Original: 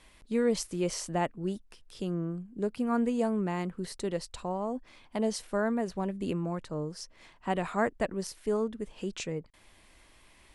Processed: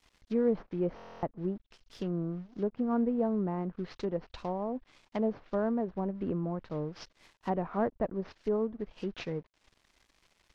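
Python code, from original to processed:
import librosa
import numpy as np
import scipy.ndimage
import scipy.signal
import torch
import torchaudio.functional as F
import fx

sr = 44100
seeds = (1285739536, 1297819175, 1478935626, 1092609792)

y = fx.cvsd(x, sr, bps=32000)
y = np.sign(y) * np.maximum(np.abs(y) - 10.0 ** (-56.5 / 20.0), 0.0)
y = fx.env_lowpass_down(y, sr, base_hz=940.0, full_db=-29.0)
y = fx.buffer_glitch(y, sr, at_s=(0.95,), block=1024, repeats=11)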